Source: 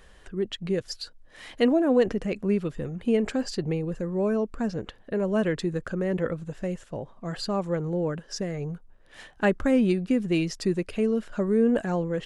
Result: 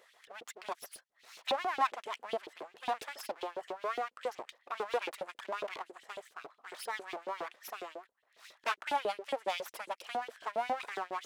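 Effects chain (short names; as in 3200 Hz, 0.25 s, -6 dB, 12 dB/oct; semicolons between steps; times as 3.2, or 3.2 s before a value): full-wave rectifier; LFO high-pass saw up 6.7 Hz 350–3500 Hz; speed mistake 44.1 kHz file played as 48 kHz; gain -7 dB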